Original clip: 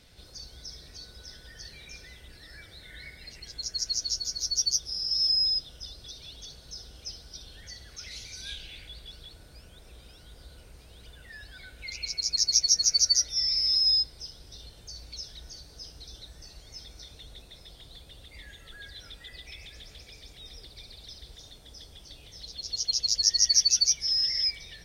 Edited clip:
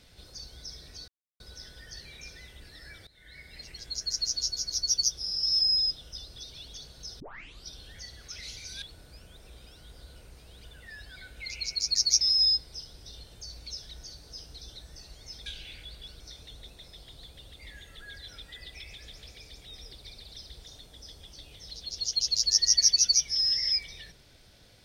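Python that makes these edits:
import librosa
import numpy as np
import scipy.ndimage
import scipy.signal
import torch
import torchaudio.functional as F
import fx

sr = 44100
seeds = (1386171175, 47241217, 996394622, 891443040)

y = fx.edit(x, sr, fx.insert_silence(at_s=1.08, length_s=0.32),
    fx.fade_in_from(start_s=2.75, length_s=0.54, floor_db=-18.5),
    fx.tape_start(start_s=6.88, length_s=0.46),
    fx.move(start_s=8.5, length_s=0.74, to_s=16.92),
    fx.cut(start_s=12.63, length_s=1.04), tone=tone)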